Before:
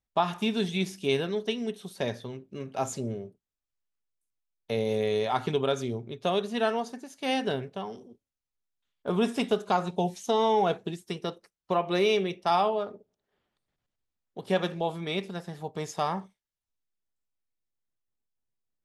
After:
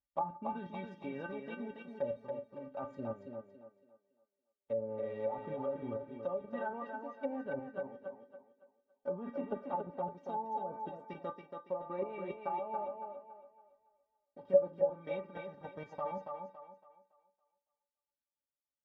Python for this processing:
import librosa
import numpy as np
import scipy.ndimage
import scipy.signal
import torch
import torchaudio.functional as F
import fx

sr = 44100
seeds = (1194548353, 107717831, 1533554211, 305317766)

p1 = fx.block_float(x, sr, bits=5)
p2 = fx.level_steps(p1, sr, step_db=11)
p3 = scipy.signal.sosfilt(scipy.signal.butter(2, 1200.0, 'lowpass', fs=sr, output='sos'), p2)
p4 = fx.peak_eq(p3, sr, hz=290.0, db=-14.5, octaves=0.22)
p5 = fx.stiff_resonator(p4, sr, f0_hz=280.0, decay_s=0.21, stiffness=0.008)
p6 = fx.env_lowpass_down(p5, sr, base_hz=630.0, full_db=-45.0)
p7 = scipy.signal.sosfilt(scipy.signal.butter(2, 42.0, 'highpass', fs=sr, output='sos'), p6)
p8 = p7 + fx.echo_thinned(p7, sr, ms=280, feedback_pct=35, hz=200.0, wet_db=-4.5, dry=0)
y = F.gain(torch.from_numpy(p8), 13.0).numpy()